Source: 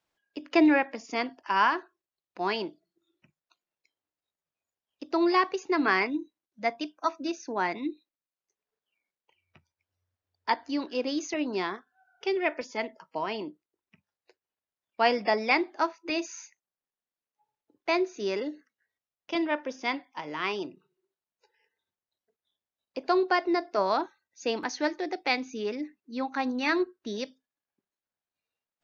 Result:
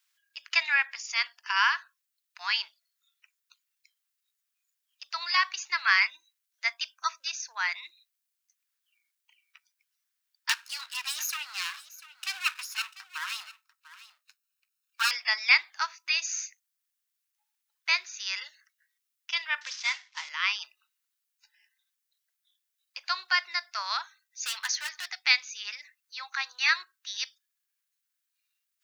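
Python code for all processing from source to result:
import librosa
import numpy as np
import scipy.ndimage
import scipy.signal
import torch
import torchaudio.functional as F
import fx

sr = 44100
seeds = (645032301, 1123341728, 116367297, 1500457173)

y = fx.chain(x, sr, fx.lower_of_two(delay_ms=0.74),
    fx.highpass(hz=460.0, slope=6),
    fx.echo_single(ms=694, db=-16.5), at=(10.49, 15.11))
y = fx.chain(y, sr, fx.cvsd(bps=32000),
    fx.band_squash(depth_pct=40), at=(19.61, 20.29))
y = fx.chain(y, sr, fx.clip_hard(threshold_db=-28.5),
    fx.band_squash(depth_pct=70), at=(24.43, 25.08))
y = scipy.signal.sosfilt(scipy.signal.cheby2(4, 80, 210.0, 'highpass', fs=sr, output='sos'), y)
y = fx.tilt_eq(y, sr, slope=3.0)
y = y * librosa.db_to_amplitude(2.5)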